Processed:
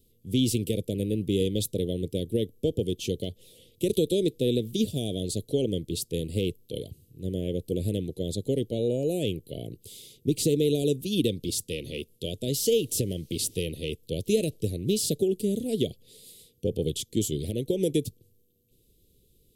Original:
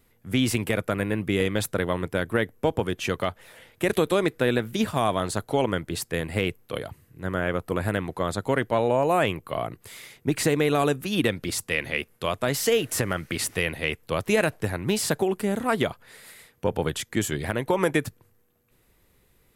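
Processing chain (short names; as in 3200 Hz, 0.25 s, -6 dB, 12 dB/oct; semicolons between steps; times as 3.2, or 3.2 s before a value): Chebyshev band-stop 460–3300 Hz, order 3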